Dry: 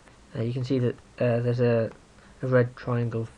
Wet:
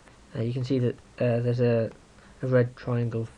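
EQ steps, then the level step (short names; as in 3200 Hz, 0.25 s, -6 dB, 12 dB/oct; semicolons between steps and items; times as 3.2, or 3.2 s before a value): dynamic EQ 1200 Hz, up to -5 dB, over -42 dBFS, Q 1.2; 0.0 dB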